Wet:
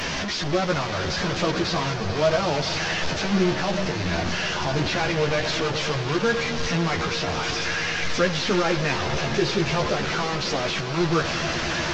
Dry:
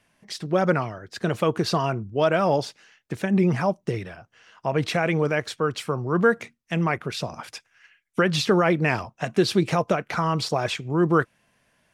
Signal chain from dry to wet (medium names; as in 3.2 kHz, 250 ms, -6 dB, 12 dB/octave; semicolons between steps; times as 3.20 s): one-bit delta coder 32 kbps, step -18 dBFS; echo with a slow build-up 109 ms, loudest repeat 5, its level -16 dB; chorus voices 4, 0.25 Hz, delay 13 ms, depth 2.1 ms